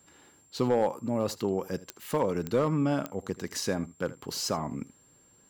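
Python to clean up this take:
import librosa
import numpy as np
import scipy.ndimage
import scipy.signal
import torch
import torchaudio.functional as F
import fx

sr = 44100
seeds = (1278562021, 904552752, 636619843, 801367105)

y = fx.fix_declip(x, sr, threshold_db=-17.0)
y = fx.fix_declick_ar(y, sr, threshold=10.0)
y = fx.notch(y, sr, hz=7400.0, q=30.0)
y = fx.fix_echo_inverse(y, sr, delay_ms=79, level_db=-18.5)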